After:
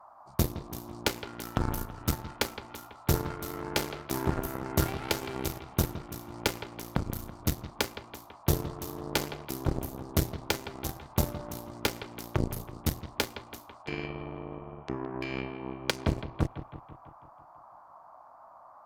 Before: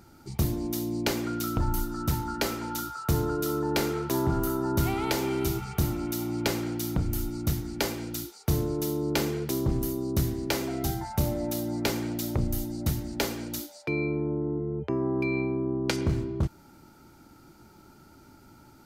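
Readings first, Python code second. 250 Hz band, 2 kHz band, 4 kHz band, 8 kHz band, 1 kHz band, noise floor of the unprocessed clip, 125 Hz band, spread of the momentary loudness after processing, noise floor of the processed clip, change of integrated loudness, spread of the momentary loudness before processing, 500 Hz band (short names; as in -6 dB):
-7.0 dB, -1.5 dB, -0.5 dB, -2.5 dB, -2.5 dB, -54 dBFS, -4.0 dB, 17 LU, -54 dBFS, -4.0 dB, 4 LU, -5.5 dB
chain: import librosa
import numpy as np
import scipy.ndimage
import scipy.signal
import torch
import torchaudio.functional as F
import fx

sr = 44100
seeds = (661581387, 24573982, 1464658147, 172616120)

y = fx.cheby_harmonics(x, sr, harmonics=(3,), levels_db=(-10,), full_scale_db=-15.0)
y = fx.dmg_noise_band(y, sr, seeds[0], low_hz=620.0, high_hz=1200.0, level_db=-57.0)
y = fx.echo_bbd(y, sr, ms=165, stages=4096, feedback_pct=58, wet_db=-12.5)
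y = y * librosa.db_to_amplitude(3.5)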